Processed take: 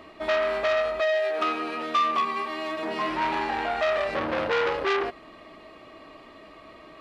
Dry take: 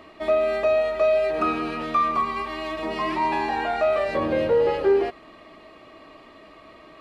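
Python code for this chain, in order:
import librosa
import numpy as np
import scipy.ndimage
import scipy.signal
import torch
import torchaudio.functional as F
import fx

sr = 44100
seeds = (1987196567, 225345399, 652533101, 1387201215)

y = fx.highpass(x, sr, hz=fx.line((1.0, 540.0), (3.08, 130.0)), slope=12, at=(1.0, 3.08), fade=0.02)
y = fx.transformer_sat(y, sr, knee_hz=1900.0)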